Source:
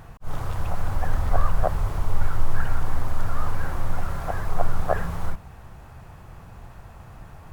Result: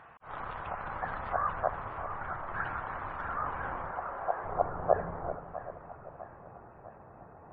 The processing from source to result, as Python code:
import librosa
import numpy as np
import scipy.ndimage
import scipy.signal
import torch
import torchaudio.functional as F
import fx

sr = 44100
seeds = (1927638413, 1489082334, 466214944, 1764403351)

p1 = fx.filter_sweep_bandpass(x, sr, from_hz=1300.0, to_hz=500.0, start_s=3.21, end_s=4.99, q=1.0)
p2 = fx.schmitt(p1, sr, flips_db=-33.0)
p3 = p1 + (p2 * 10.0 ** (-9.5 / 20.0))
p4 = fx.spec_gate(p3, sr, threshold_db=-30, keep='strong')
p5 = fx.air_absorb(p4, sr, metres=240.0, at=(1.6, 2.48))
p6 = fx.bandpass_edges(p5, sr, low_hz=380.0, high_hz=2100.0, at=(3.91, 4.44))
y = p6 + fx.echo_split(p6, sr, split_hz=710.0, low_ms=386, high_ms=652, feedback_pct=52, wet_db=-11, dry=0)